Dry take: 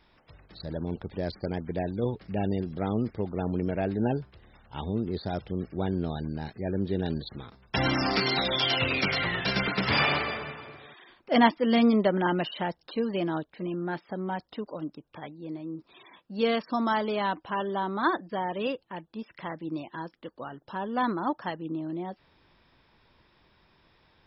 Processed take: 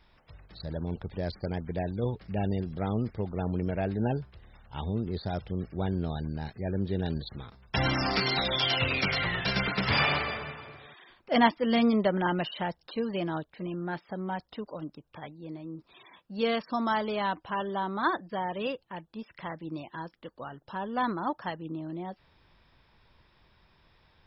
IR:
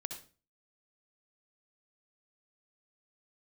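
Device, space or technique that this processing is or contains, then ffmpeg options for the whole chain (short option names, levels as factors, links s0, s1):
low shelf boost with a cut just above: -af "lowshelf=f=100:g=6.5,equalizer=f=300:t=o:w=1.1:g=-4,volume=0.891"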